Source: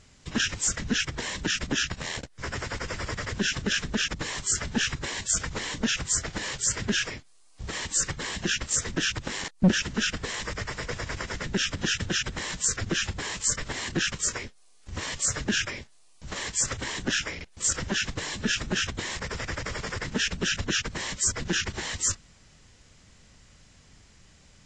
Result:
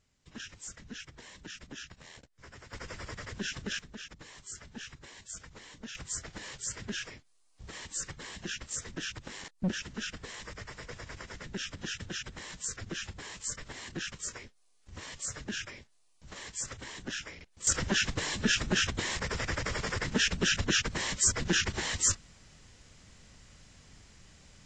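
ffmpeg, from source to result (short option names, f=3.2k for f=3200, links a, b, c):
-af "asetnsamples=n=441:p=0,asendcmd='2.73 volume volume -9.5dB;3.79 volume volume -18dB;5.95 volume volume -11dB;17.67 volume volume -0.5dB',volume=-18dB"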